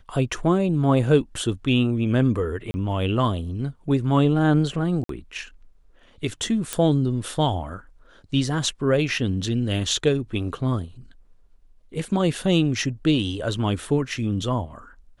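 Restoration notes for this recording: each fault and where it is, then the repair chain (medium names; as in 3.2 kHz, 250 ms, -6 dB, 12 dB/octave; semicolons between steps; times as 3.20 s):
2.71–2.74 s: dropout 30 ms
5.04–5.09 s: dropout 53 ms
6.73 s: pop -9 dBFS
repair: de-click; interpolate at 2.71 s, 30 ms; interpolate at 5.04 s, 53 ms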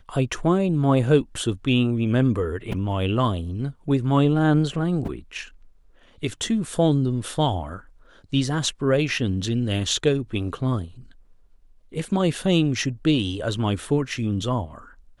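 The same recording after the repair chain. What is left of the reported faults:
nothing left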